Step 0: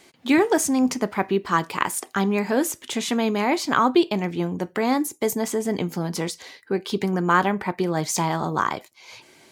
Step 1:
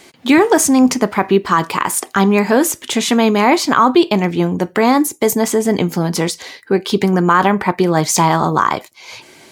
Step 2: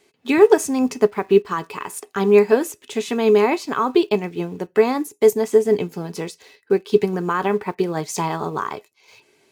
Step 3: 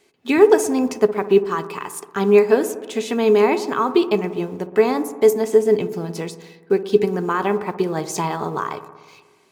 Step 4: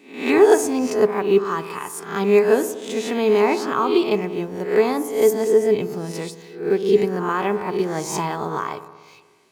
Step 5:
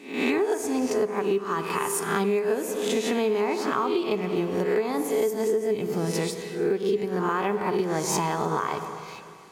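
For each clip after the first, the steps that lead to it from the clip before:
dynamic bell 1.1 kHz, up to +4 dB, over -33 dBFS, Q 2.3; loudness maximiser +10.5 dB; trim -1 dB
in parallel at -11 dB: bit crusher 5-bit; on the sum: small resonant body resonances 420/2600 Hz, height 14 dB, ringing for 95 ms; upward expansion 1.5:1, over -20 dBFS; trim -7.5 dB
feedback echo behind a low-pass 60 ms, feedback 74%, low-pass 1.2 kHz, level -12.5 dB
reverse spectral sustain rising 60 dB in 0.50 s; trim -2.5 dB
Schroeder reverb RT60 2.6 s, combs from 29 ms, DRR 13 dB; compression 12:1, threshold -26 dBFS, peak gain reduction 18.5 dB; trim +5 dB; MP3 80 kbps 44.1 kHz

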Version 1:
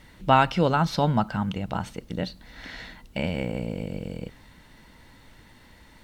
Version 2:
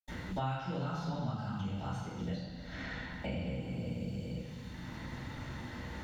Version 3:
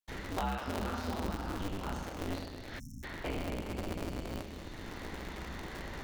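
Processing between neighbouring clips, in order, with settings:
reverberation RT60 1.1 s, pre-delay 76 ms; three bands compressed up and down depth 100%; trim +5.5 dB
cycle switcher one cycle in 2, inverted; peaking EQ 120 Hz -5 dB 1.1 oct; spectral selection erased 2.79–3.04 s, 290–5300 Hz; trim +1.5 dB

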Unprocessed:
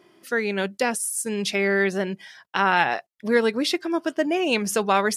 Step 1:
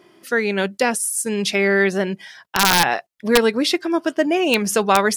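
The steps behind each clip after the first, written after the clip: integer overflow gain 8.5 dB; trim +4.5 dB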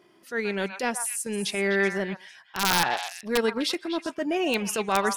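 transient shaper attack -8 dB, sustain -4 dB; repeats whose band climbs or falls 126 ms, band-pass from 1.1 kHz, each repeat 1.4 oct, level -4.5 dB; trim -6.5 dB

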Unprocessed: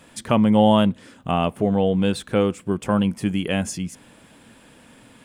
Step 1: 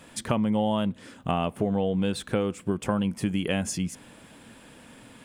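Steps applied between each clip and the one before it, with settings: compression 6:1, threshold -22 dBFS, peak gain reduction 10.5 dB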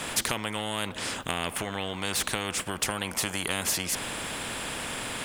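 spectrum-flattening compressor 4:1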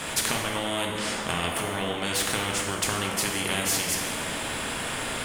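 plate-style reverb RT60 2.2 s, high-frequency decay 0.55×, DRR -1 dB

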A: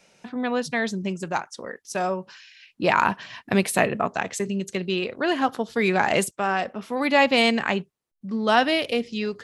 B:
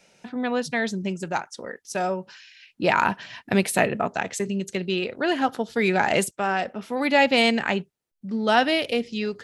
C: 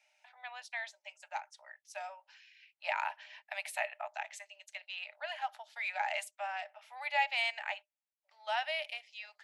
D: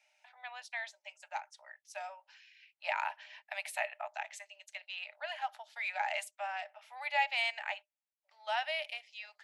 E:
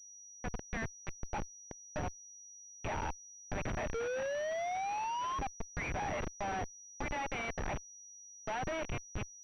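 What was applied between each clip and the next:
band-stop 1.1 kHz, Q 7.8
rippled Chebyshev high-pass 590 Hz, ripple 9 dB; trim -9 dB
no audible change
painted sound rise, 3.94–5.39 s, 450–1100 Hz -29 dBFS; Schmitt trigger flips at -39 dBFS; class-D stage that switches slowly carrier 5.8 kHz

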